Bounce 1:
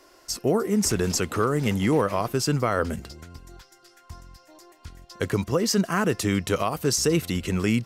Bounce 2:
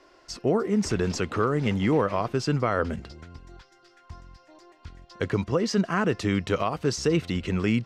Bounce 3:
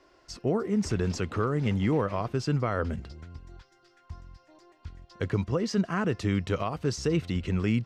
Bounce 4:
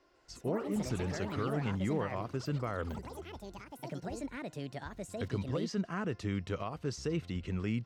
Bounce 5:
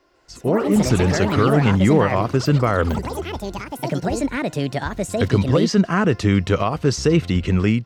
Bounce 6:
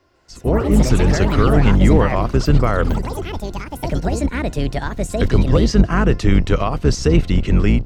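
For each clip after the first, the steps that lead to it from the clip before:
LPF 4200 Hz 12 dB/oct; gain -1 dB
bell 72 Hz +7 dB 2.5 oct; gain -5 dB
echoes that change speed 0.15 s, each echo +6 st, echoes 3, each echo -6 dB; gain -8 dB
AGC gain up to 11 dB; gain +7 dB
octaver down 2 oct, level +3 dB

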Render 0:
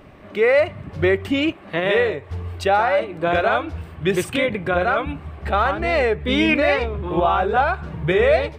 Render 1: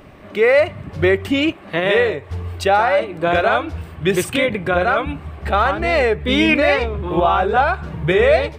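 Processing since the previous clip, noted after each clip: high shelf 5400 Hz +4.5 dB; gain +2.5 dB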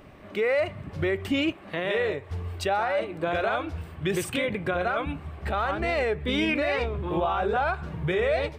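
limiter -10.5 dBFS, peak gain reduction 6.5 dB; gain -6.5 dB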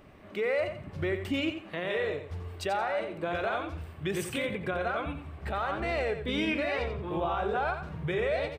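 feedback echo 88 ms, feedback 25%, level -9 dB; gain -5 dB

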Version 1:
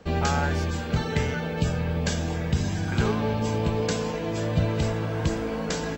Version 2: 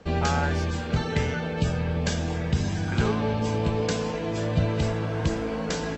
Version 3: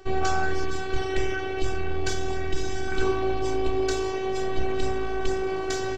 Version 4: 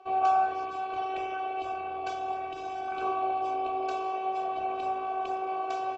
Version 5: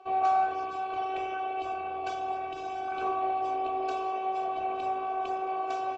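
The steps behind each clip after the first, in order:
LPF 8100 Hz 12 dB/oct
low shelf 100 Hz +5.5 dB; robotiser 379 Hz; in parallel at -5.5 dB: hard clip -22 dBFS, distortion -12 dB
vowel filter a; gain +7.5 dB
in parallel at -6 dB: soft clip -25.5 dBFS, distortion -13 dB; on the sum: gain -2.5 dB; MP3 40 kbps 22050 Hz

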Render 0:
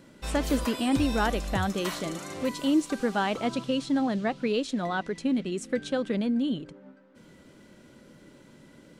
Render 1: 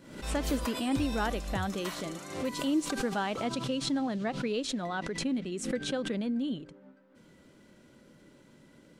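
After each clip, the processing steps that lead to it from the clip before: backwards sustainer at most 80 dB/s; gain -5 dB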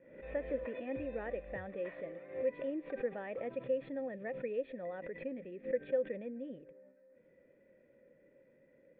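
vocal tract filter e; gain +4 dB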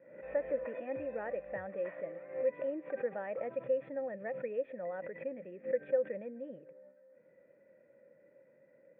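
speaker cabinet 120–2500 Hz, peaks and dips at 260 Hz -5 dB, 390 Hz -3 dB, 590 Hz +5 dB, 870 Hz +4 dB, 1400 Hz +4 dB

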